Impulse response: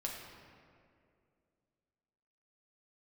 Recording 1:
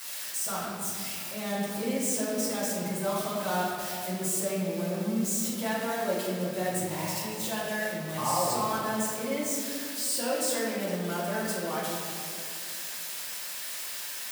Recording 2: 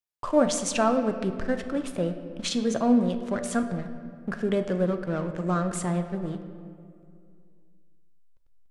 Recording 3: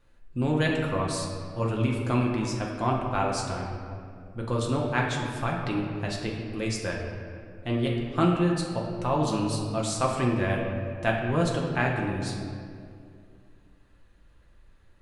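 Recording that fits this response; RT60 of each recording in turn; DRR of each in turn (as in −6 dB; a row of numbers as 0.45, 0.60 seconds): 3; 2.4, 2.4, 2.4 seconds; −10.5, 7.0, −2.0 decibels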